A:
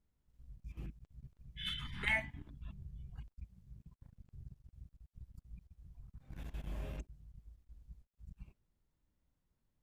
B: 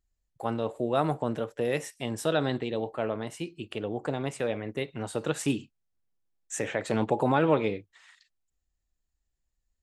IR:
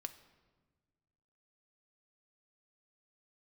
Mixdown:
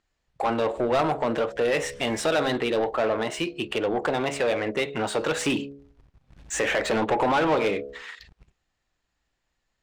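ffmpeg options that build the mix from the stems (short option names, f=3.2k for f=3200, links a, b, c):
-filter_complex "[0:a]acrusher=bits=2:mode=log:mix=0:aa=0.000001,volume=-4dB[a];[1:a]bandreject=f=69.98:t=h:w=4,bandreject=f=139.96:t=h:w=4,bandreject=f=209.94:t=h:w=4,bandreject=f=279.92:t=h:w=4,bandreject=f=349.9:t=h:w=4,bandreject=f=419.88:t=h:w=4,bandreject=f=489.86:t=h:w=4,bandreject=f=559.84:t=h:w=4,bandreject=f=629.82:t=h:w=4,bandreject=f=699.8:t=h:w=4,acompressor=threshold=-34dB:ratio=1.5,asplit=2[b][c];[c]highpass=f=720:p=1,volume=23dB,asoftclip=type=tanh:threshold=-14dB[d];[b][d]amix=inputs=2:normalize=0,lowpass=f=3.9k:p=1,volume=-6dB,volume=1dB,asplit=2[e][f];[f]apad=whole_len=433253[g];[a][g]sidechaincompress=threshold=-29dB:ratio=8:attack=9.4:release=104[h];[h][e]amix=inputs=2:normalize=0,adynamicsmooth=sensitivity=8:basefreq=5.8k"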